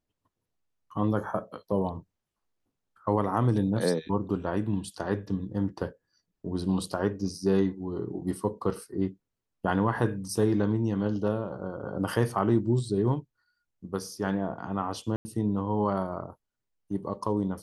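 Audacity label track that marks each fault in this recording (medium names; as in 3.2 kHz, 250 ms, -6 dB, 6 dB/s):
15.160000	15.250000	dropout 90 ms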